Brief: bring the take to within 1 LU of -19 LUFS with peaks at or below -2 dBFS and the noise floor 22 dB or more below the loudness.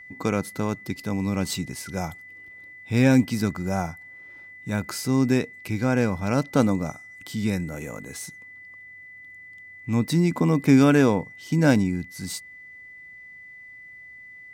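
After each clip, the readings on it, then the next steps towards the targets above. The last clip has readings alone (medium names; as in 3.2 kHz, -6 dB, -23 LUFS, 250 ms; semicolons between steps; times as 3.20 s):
steady tone 2 kHz; tone level -42 dBFS; loudness -24.0 LUFS; peak level -5.5 dBFS; loudness target -19.0 LUFS
-> band-stop 2 kHz, Q 30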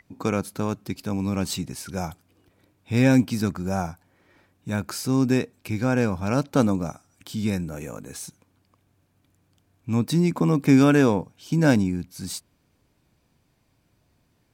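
steady tone not found; loudness -24.0 LUFS; peak level -5.5 dBFS; loudness target -19.0 LUFS
-> trim +5 dB; peak limiter -2 dBFS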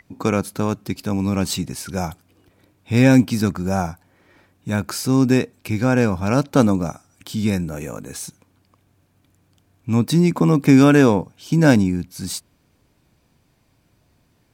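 loudness -19.0 LUFS; peak level -2.0 dBFS; noise floor -63 dBFS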